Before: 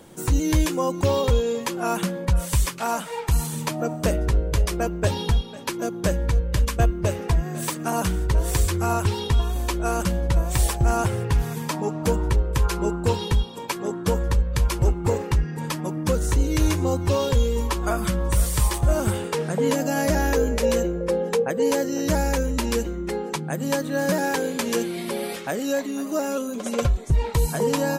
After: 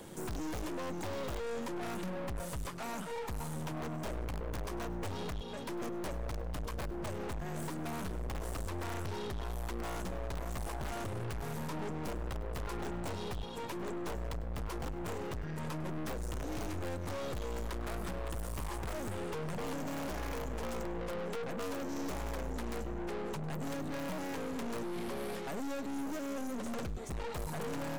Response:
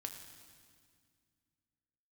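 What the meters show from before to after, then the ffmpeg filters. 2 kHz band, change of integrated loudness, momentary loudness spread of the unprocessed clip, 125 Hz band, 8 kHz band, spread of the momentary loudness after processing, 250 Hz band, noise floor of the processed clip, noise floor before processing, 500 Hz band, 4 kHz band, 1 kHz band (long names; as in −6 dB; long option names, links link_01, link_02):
−13.5 dB, −16.0 dB, 6 LU, −17.5 dB, −18.0 dB, 2 LU, −13.5 dB, −40 dBFS, −33 dBFS, −15.5 dB, −15.0 dB, −13.5 dB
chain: -filter_complex "[0:a]acrossover=split=330|1500[link_01][link_02][link_03];[link_01]acompressor=threshold=-27dB:ratio=4[link_04];[link_02]acompressor=threshold=-32dB:ratio=4[link_05];[link_03]acompressor=threshold=-46dB:ratio=4[link_06];[link_04][link_05][link_06]amix=inputs=3:normalize=0,aeval=exprs='(mod(9.44*val(0)+1,2)-1)/9.44':channel_layout=same,aeval=exprs='(tanh(89.1*val(0)+0.65)-tanh(0.65))/89.1':channel_layout=same,asplit=2[link_07][link_08];[1:a]atrim=start_sample=2205,adelay=101[link_09];[link_08][link_09]afir=irnorm=-1:irlink=0,volume=-15.5dB[link_10];[link_07][link_10]amix=inputs=2:normalize=0,volume=1.5dB"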